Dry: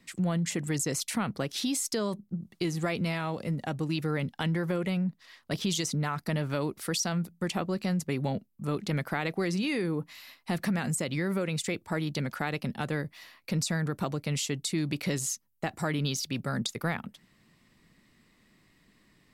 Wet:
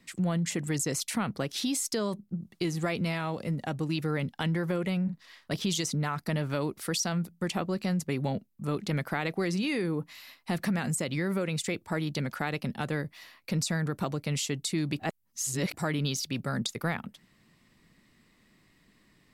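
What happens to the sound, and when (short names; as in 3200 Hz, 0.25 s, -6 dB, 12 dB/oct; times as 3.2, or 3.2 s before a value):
5.03–5.51 doubler 46 ms -7.5 dB
14.99–15.74 reverse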